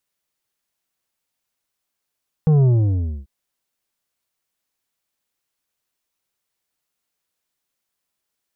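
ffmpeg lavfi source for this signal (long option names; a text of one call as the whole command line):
ffmpeg -f lavfi -i "aevalsrc='0.251*clip((0.79-t)/0.62,0,1)*tanh(2.51*sin(2*PI*160*0.79/log(65/160)*(exp(log(65/160)*t/0.79)-1)))/tanh(2.51)':duration=0.79:sample_rate=44100" out.wav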